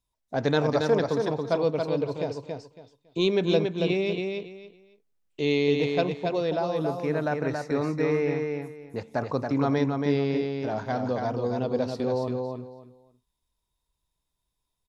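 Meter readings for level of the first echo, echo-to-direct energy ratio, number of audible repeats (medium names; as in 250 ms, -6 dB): -4.5 dB, -4.5 dB, 3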